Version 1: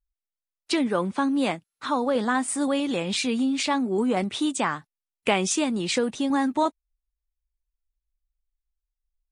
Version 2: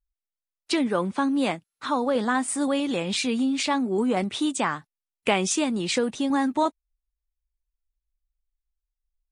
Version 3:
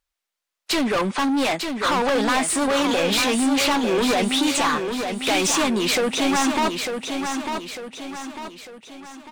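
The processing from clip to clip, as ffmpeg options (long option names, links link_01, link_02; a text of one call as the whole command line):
ffmpeg -i in.wav -af anull out.wav
ffmpeg -i in.wav -filter_complex "[0:a]asplit=2[link_01][link_02];[link_02]highpass=frequency=720:poles=1,volume=24dB,asoftclip=type=tanh:threshold=-7dB[link_03];[link_01][link_03]amix=inputs=2:normalize=0,lowpass=frequency=4900:poles=1,volume=-6dB,asoftclip=type=hard:threshold=-17dB,asplit=2[link_04][link_05];[link_05]aecho=0:1:899|1798|2697|3596|4495:0.501|0.226|0.101|0.0457|0.0206[link_06];[link_04][link_06]amix=inputs=2:normalize=0,volume=-2dB" out.wav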